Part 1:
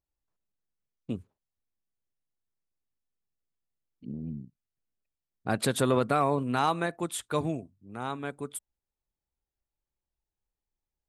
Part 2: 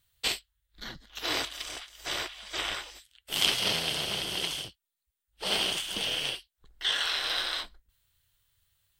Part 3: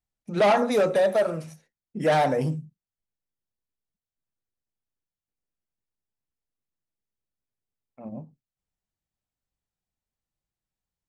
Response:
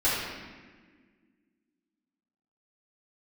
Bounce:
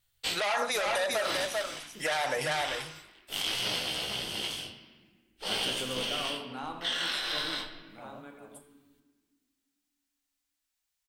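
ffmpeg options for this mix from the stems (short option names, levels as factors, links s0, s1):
-filter_complex "[0:a]highpass=150,volume=0.15,asplit=2[s0][s1];[s1]volume=0.224[s2];[1:a]flanger=delay=15.5:depth=7.5:speed=0.51,volume=0.891,asplit=2[s3][s4];[s4]volume=0.112[s5];[2:a]tiltshelf=f=870:g=-9,equalizer=f=210:t=o:w=1.9:g=-12.5,volume=1.19,asplit=2[s6][s7];[s7]volume=0.422[s8];[3:a]atrim=start_sample=2205[s9];[s2][s5]amix=inputs=2:normalize=0[s10];[s10][s9]afir=irnorm=-1:irlink=0[s11];[s8]aecho=0:1:391:1[s12];[s0][s3][s6][s11][s12]amix=inputs=5:normalize=0,alimiter=limit=0.106:level=0:latency=1:release=61"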